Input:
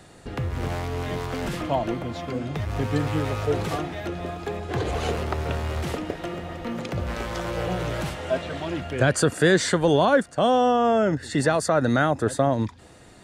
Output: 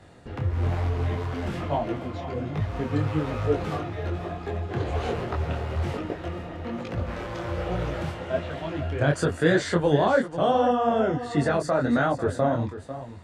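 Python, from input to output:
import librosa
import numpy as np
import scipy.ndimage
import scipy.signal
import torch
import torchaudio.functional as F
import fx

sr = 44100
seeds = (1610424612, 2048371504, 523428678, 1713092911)

y = fx.lowpass(x, sr, hz=2800.0, slope=6)
y = fx.peak_eq(y, sr, hz=89.0, db=9.5, octaves=0.21)
y = y + 10.0 ** (-12.5 / 20.0) * np.pad(y, (int(496 * sr / 1000.0), 0))[:len(y)]
y = fx.detune_double(y, sr, cents=40)
y = F.gain(torch.from_numpy(y), 1.5).numpy()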